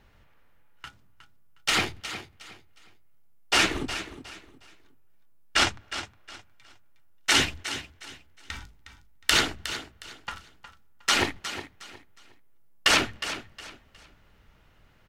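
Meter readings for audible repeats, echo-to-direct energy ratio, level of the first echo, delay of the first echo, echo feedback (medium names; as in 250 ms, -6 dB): 3, -11.5 dB, -12.0 dB, 362 ms, 28%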